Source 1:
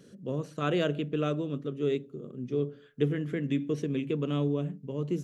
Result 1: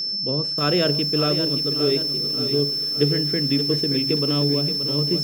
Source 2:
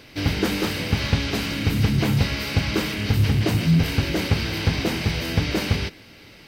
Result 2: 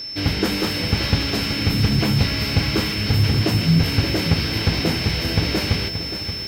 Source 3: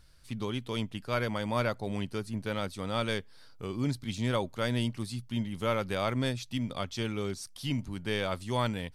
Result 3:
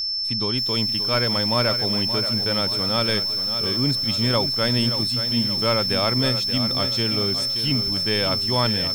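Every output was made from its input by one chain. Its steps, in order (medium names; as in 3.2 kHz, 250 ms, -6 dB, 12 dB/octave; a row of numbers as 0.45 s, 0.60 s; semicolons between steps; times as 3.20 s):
whistle 5.3 kHz -30 dBFS; bit-crushed delay 577 ms, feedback 55%, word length 7-bit, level -9 dB; normalise loudness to -20 LUFS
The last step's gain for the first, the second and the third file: +6.5 dB, +1.0 dB, +7.0 dB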